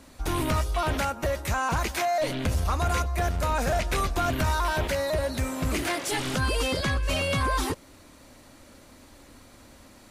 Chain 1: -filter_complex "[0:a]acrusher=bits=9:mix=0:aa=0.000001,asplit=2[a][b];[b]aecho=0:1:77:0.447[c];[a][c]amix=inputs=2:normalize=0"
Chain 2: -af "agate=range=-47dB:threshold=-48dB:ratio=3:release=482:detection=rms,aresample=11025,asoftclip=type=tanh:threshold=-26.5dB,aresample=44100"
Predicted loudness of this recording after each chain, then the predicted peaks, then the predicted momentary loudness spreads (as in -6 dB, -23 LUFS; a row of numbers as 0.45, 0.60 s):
-26.5, -31.5 LUFS; -15.0, -23.5 dBFS; 3, 2 LU